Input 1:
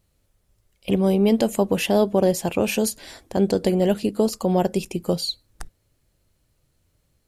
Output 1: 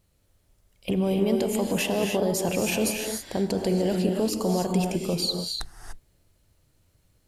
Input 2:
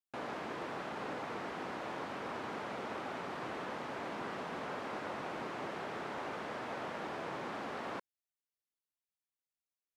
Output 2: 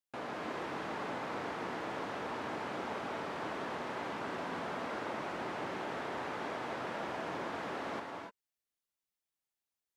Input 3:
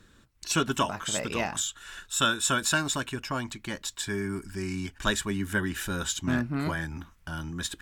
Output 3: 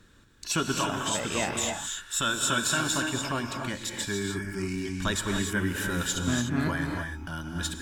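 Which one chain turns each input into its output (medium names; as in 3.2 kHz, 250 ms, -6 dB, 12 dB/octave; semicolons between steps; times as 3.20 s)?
peak limiter -17 dBFS; gated-style reverb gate 320 ms rising, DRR 2.5 dB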